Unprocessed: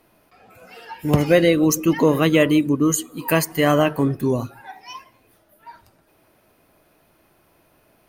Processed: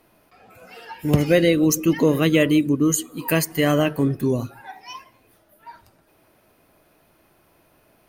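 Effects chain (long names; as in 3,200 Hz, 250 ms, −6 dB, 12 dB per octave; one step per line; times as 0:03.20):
dynamic equaliser 950 Hz, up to −7 dB, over −34 dBFS, Q 1.2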